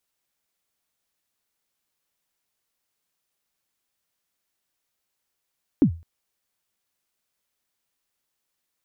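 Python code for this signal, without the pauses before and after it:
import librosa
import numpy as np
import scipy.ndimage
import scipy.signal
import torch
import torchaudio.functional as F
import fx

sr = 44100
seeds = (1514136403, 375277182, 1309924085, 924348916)

y = fx.drum_kick(sr, seeds[0], length_s=0.21, level_db=-9.0, start_hz=330.0, end_hz=83.0, sweep_ms=88.0, decay_s=0.32, click=False)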